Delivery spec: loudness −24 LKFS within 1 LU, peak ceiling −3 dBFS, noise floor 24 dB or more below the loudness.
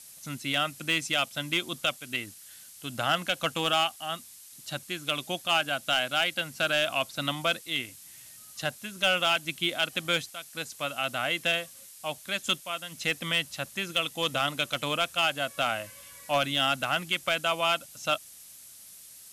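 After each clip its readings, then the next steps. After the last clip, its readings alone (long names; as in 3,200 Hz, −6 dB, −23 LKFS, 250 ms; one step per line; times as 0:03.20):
share of clipped samples 0.3%; peaks flattened at −16.5 dBFS; background noise floor −50 dBFS; target noise floor −53 dBFS; integrated loudness −28.5 LKFS; sample peak −16.5 dBFS; target loudness −24.0 LKFS
→ clipped peaks rebuilt −16.5 dBFS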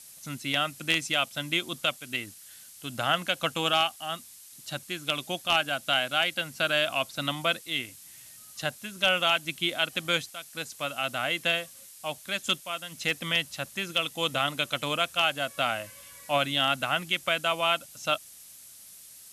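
share of clipped samples 0.0%; background noise floor −50 dBFS; target noise floor −52 dBFS
→ broadband denoise 6 dB, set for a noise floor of −50 dBFS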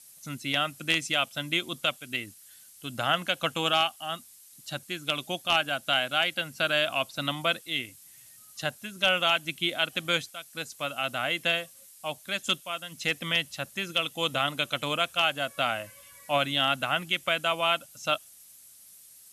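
background noise floor −53 dBFS; integrated loudness −28.0 LKFS; sample peak −7.5 dBFS; target loudness −24.0 LKFS
→ level +4 dB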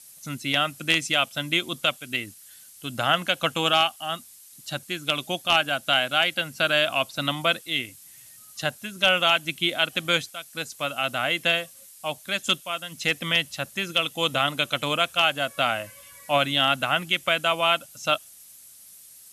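integrated loudness −24.0 LKFS; sample peak −3.5 dBFS; background noise floor −49 dBFS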